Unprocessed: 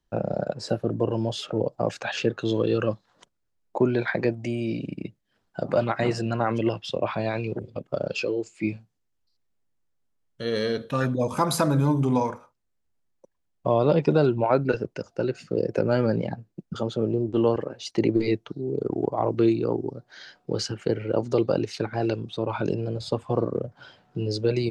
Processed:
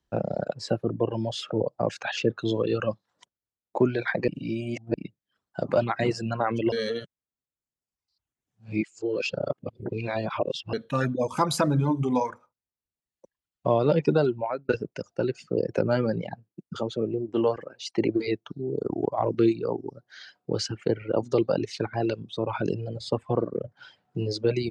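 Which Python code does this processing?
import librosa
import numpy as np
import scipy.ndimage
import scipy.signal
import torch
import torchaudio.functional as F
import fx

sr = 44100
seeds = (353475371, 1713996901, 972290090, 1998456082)

y = fx.low_shelf(x, sr, hz=160.0, db=-7.0, at=(16.49, 18.42))
y = fx.edit(y, sr, fx.reverse_span(start_s=4.28, length_s=0.66),
    fx.reverse_span(start_s=6.72, length_s=4.01),
    fx.fade_out_span(start_s=14.09, length_s=0.6, curve='qsin'), tone=tone)
y = scipy.signal.sosfilt(scipy.signal.butter(2, 44.0, 'highpass', fs=sr, output='sos'), y)
y = fx.dereverb_blind(y, sr, rt60_s=1.1)
y = scipy.signal.sosfilt(scipy.signal.butter(2, 9100.0, 'lowpass', fs=sr, output='sos'), y)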